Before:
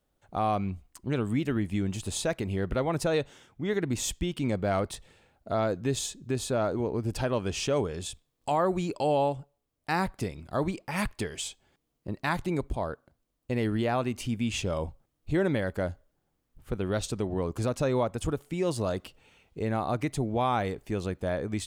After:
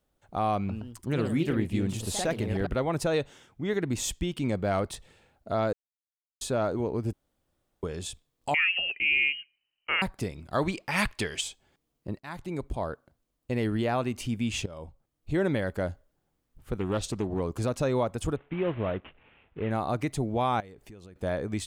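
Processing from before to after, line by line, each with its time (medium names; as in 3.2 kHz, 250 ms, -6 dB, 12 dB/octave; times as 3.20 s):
0.57–2.79 s: ever faster or slower copies 120 ms, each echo +2 st, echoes 2, each echo -6 dB
5.73–6.41 s: mute
7.13–7.83 s: room tone
8.54–10.02 s: frequency inversion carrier 3 kHz
10.52–11.41 s: peaking EQ 2.9 kHz +7.5 dB 2.7 oct
12.19–12.84 s: fade in, from -18.5 dB
14.66–15.44 s: fade in, from -16 dB
16.79–17.40 s: loudspeaker Doppler distortion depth 0.28 ms
18.36–19.71 s: CVSD coder 16 kbps
20.60–21.16 s: compression 5:1, threshold -46 dBFS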